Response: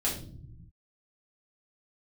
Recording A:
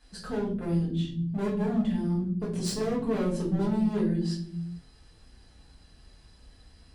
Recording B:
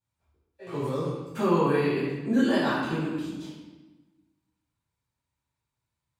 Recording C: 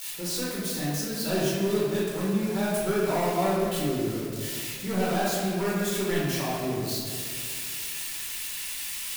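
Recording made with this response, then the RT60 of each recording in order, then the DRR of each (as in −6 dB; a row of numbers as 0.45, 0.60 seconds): A; non-exponential decay, 1.2 s, 2.2 s; −7.0, −12.0, −7.5 decibels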